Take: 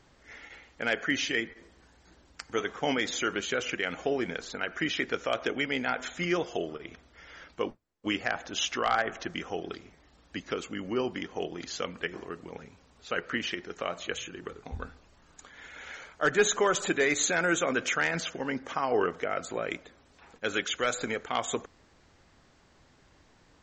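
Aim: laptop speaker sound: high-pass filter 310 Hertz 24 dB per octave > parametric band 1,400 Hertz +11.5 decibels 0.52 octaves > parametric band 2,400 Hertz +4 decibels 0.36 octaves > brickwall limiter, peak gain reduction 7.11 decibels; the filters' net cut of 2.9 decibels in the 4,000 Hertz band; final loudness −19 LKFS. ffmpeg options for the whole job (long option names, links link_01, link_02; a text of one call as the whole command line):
ffmpeg -i in.wav -af "highpass=frequency=310:width=0.5412,highpass=frequency=310:width=1.3066,equalizer=frequency=1400:width_type=o:width=0.52:gain=11.5,equalizer=frequency=2400:width_type=o:width=0.36:gain=4,equalizer=frequency=4000:width_type=o:gain=-6,volume=9.5dB,alimiter=limit=-4.5dB:level=0:latency=1" out.wav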